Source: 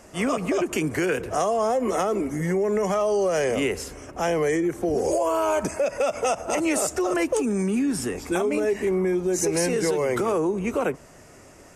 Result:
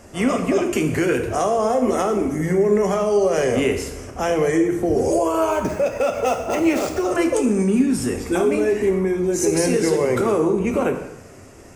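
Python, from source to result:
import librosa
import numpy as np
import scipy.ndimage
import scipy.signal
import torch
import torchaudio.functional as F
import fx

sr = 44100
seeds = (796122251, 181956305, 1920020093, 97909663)

y = fx.median_filter(x, sr, points=5, at=(5.5, 7.01))
y = fx.low_shelf(y, sr, hz=330.0, db=5.5)
y = fx.rev_double_slope(y, sr, seeds[0], early_s=0.84, late_s=2.8, knee_db=-25, drr_db=4.5)
y = F.gain(torch.from_numpy(y), 1.0).numpy()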